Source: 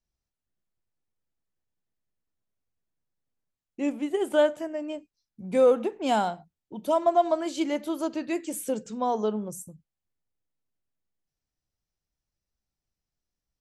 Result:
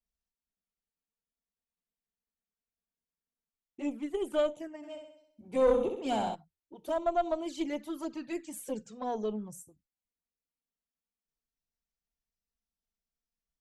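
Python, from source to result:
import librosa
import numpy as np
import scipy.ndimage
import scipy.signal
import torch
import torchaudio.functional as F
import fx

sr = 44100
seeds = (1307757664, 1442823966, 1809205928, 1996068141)

y = fx.env_flanger(x, sr, rest_ms=4.4, full_db=-22.5)
y = fx.room_flutter(y, sr, wall_m=11.2, rt60_s=0.71, at=(4.82, 6.34), fade=0.02)
y = fx.tube_stage(y, sr, drive_db=14.0, bias=0.55)
y = y * librosa.db_to_amplitude(-2.5)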